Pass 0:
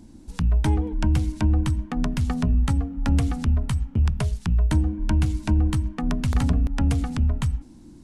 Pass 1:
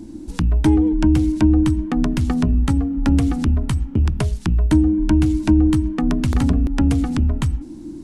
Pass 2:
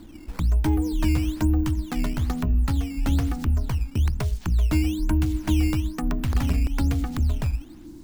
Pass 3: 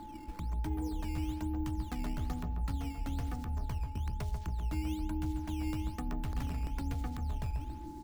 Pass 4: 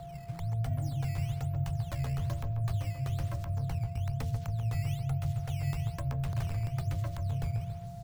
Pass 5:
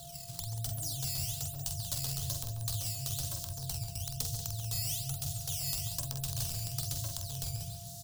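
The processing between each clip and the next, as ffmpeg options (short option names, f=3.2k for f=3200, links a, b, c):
-filter_complex "[0:a]equalizer=f=320:t=o:w=0.52:g=12.5,asplit=2[a][b];[b]acompressor=threshold=-26dB:ratio=6,volume=0dB[c];[a][c]amix=inputs=2:normalize=0"
-filter_complex "[0:a]equalizer=f=260:w=0.54:g=-8,acrossover=split=1100[a][b];[b]asoftclip=type=tanh:threshold=-25dB[c];[a][c]amix=inputs=2:normalize=0,acrusher=samples=10:mix=1:aa=0.000001:lfo=1:lforange=16:lforate=1.1,volume=-2dB"
-filter_complex "[0:a]areverse,acompressor=threshold=-28dB:ratio=6,areverse,aeval=exprs='val(0)+0.00891*sin(2*PI*860*n/s)':c=same,asplit=2[a][b];[b]adelay=139,lowpass=f=2k:p=1,volume=-6.5dB,asplit=2[c][d];[d]adelay=139,lowpass=f=2k:p=1,volume=0.51,asplit=2[e][f];[f]adelay=139,lowpass=f=2k:p=1,volume=0.51,asplit=2[g][h];[h]adelay=139,lowpass=f=2k:p=1,volume=0.51,asplit=2[i][j];[j]adelay=139,lowpass=f=2k:p=1,volume=0.51,asplit=2[k][l];[l]adelay=139,lowpass=f=2k:p=1,volume=0.51[m];[a][c][e][g][i][k][m]amix=inputs=7:normalize=0,volume=-5.5dB"
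-af "afreqshift=-170,volume=2.5dB"
-filter_complex "[0:a]asplit=2[a][b];[b]aecho=0:1:46.65|186.6:0.501|0.282[c];[a][c]amix=inputs=2:normalize=0,aexciter=amount=13.1:drive=5.4:freq=3.3k,volume=-8dB"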